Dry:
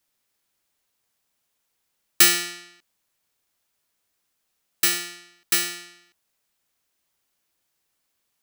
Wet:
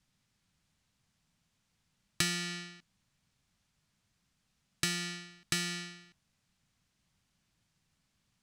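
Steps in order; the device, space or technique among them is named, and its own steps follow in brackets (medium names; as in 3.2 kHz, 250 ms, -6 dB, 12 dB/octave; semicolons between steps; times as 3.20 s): jukebox (low-pass 7.1 kHz 12 dB/octave; resonant low shelf 260 Hz +13.5 dB, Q 1.5; compression 5:1, threshold -30 dBFS, peak gain reduction 14.5 dB)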